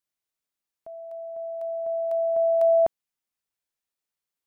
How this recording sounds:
background noise floor −89 dBFS
spectral slope +11.0 dB per octave

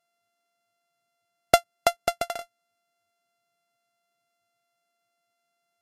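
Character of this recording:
a buzz of ramps at a fixed pitch in blocks of 64 samples
Ogg Vorbis

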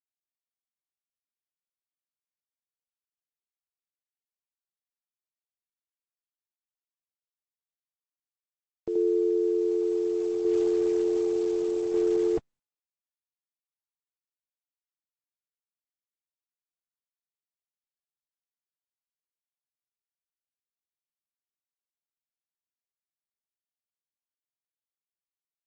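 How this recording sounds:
tremolo saw down 0.67 Hz, depth 45%
a quantiser's noise floor 10 bits, dither none
Opus

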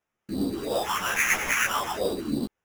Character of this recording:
phaser sweep stages 4, 3 Hz, lowest notch 540–3,100 Hz
aliases and images of a low sample rate 4,300 Hz, jitter 0%
a shimmering, thickened sound

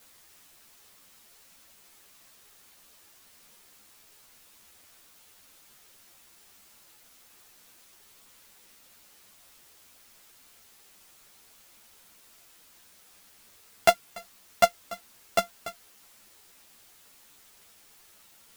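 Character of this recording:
a buzz of ramps at a fixed pitch in blocks of 64 samples
tremolo triangle 5.5 Hz, depth 70%
a quantiser's noise floor 10 bits, dither triangular
a shimmering, thickened sound

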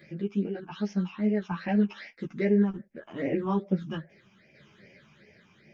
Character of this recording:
phaser sweep stages 8, 2.5 Hz, lowest notch 540–1,200 Hz
tremolo saw down 0.66 Hz, depth 50%
a shimmering, thickened sound

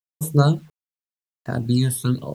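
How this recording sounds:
phaser sweep stages 12, 0.91 Hz, lowest notch 410–4,200 Hz
a quantiser's noise floor 10 bits, dither none

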